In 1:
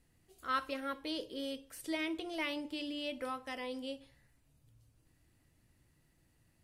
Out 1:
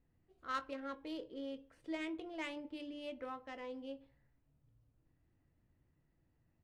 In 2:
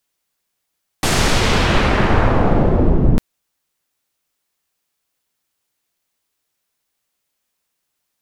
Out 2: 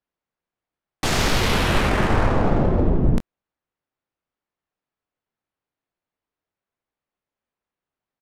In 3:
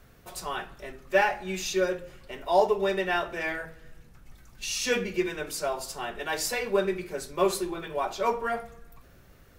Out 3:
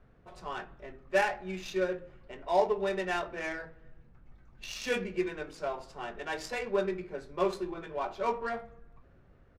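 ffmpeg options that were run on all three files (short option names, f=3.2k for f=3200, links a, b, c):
-filter_complex "[0:a]adynamicsmooth=sensitivity=3:basefreq=1.8k,aresample=32000,aresample=44100,highshelf=f=6.1k:g=4.5,asplit=2[a][b];[b]adelay=22,volume=-13.5dB[c];[a][c]amix=inputs=2:normalize=0,volume=-4.5dB"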